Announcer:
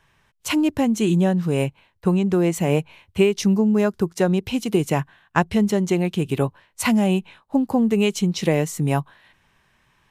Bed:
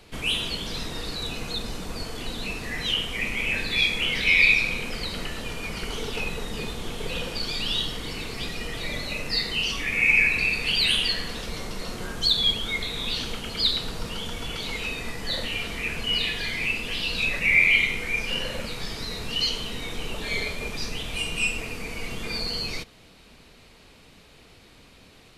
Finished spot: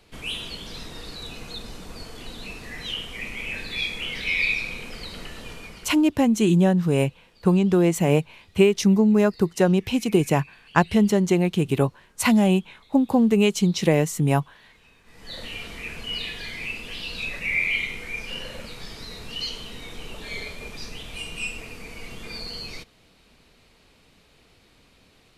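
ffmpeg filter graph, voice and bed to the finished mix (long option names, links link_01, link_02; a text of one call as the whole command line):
ffmpeg -i stem1.wav -i stem2.wav -filter_complex "[0:a]adelay=5400,volume=0.5dB[link_01];[1:a]volume=16dB,afade=type=out:start_time=5.52:duration=0.5:silence=0.0841395,afade=type=in:start_time=15.05:duration=0.43:silence=0.0841395[link_02];[link_01][link_02]amix=inputs=2:normalize=0" out.wav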